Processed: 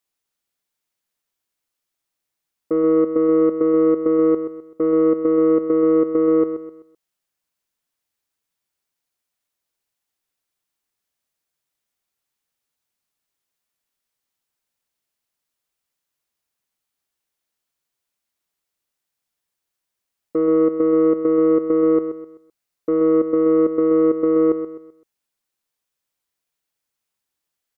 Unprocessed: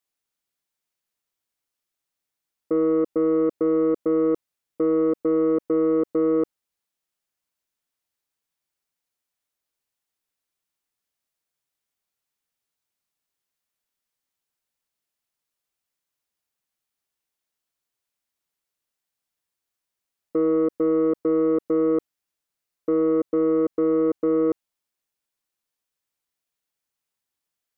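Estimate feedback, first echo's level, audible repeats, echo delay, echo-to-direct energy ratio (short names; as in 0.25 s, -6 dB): 36%, -10.0 dB, 3, 0.128 s, -9.5 dB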